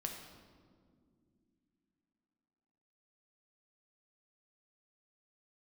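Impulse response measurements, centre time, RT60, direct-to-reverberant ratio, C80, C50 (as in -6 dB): 44 ms, no single decay rate, 2.0 dB, 6.5 dB, 4.5 dB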